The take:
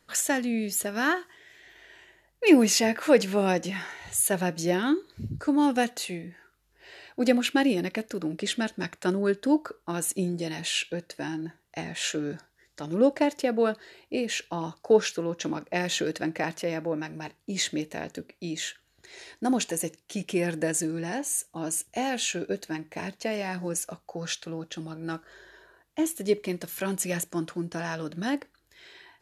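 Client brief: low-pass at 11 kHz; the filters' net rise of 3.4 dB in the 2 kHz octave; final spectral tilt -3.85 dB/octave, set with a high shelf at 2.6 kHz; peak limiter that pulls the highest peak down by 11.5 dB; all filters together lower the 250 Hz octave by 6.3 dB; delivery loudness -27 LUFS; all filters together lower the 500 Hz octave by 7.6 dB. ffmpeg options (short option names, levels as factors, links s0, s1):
-af "lowpass=11000,equalizer=f=250:t=o:g=-5.5,equalizer=f=500:t=o:g=-8,equalizer=f=2000:t=o:g=3,highshelf=f=2600:g=4,volume=1.88,alimiter=limit=0.188:level=0:latency=1"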